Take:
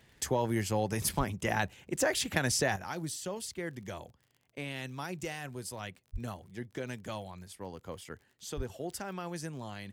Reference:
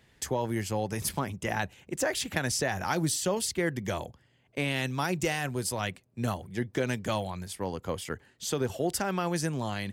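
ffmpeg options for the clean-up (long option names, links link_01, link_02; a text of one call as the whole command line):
ffmpeg -i in.wav -filter_complex "[0:a]adeclick=threshold=4,asplit=3[link_01][link_02][link_03];[link_01]afade=type=out:start_time=1.17:duration=0.02[link_04];[link_02]highpass=frequency=140:width=0.5412,highpass=frequency=140:width=1.3066,afade=type=in:start_time=1.17:duration=0.02,afade=type=out:start_time=1.29:duration=0.02[link_05];[link_03]afade=type=in:start_time=1.29:duration=0.02[link_06];[link_04][link_05][link_06]amix=inputs=3:normalize=0,asplit=3[link_07][link_08][link_09];[link_07]afade=type=out:start_time=6.12:duration=0.02[link_10];[link_08]highpass=frequency=140:width=0.5412,highpass=frequency=140:width=1.3066,afade=type=in:start_time=6.12:duration=0.02,afade=type=out:start_time=6.24:duration=0.02[link_11];[link_09]afade=type=in:start_time=6.24:duration=0.02[link_12];[link_10][link_11][link_12]amix=inputs=3:normalize=0,asplit=3[link_13][link_14][link_15];[link_13]afade=type=out:start_time=8.56:duration=0.02[link_16];[link_14]highpass=frequency=140:width=0.5412,highpass=frequency=140:width=1.3066,afade=type=in:start_time=8.56:duration=0.02,afade=type=out:start_time=8.68:duration=0.02[link_17];[link_15]afade=type=in:start_time=8.68:duration=0.02[link_18];[link_16][link_17][link_18]amix=inputs=3:normalize=0,asetnsamples=nb_out_samples=441:pad=0,asendcmd='2.76 volume volume 9.5dB',volume=0dB" out.wav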